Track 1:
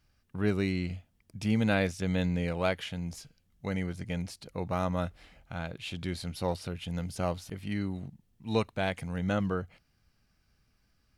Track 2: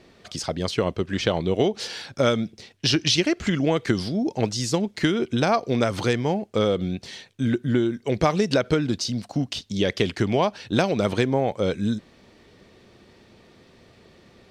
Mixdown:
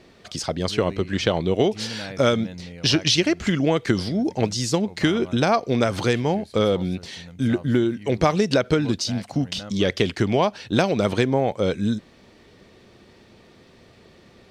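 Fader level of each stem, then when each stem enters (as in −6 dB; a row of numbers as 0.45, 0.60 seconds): −8.5, +1.5 decibels; 0.30, 0.00 seconds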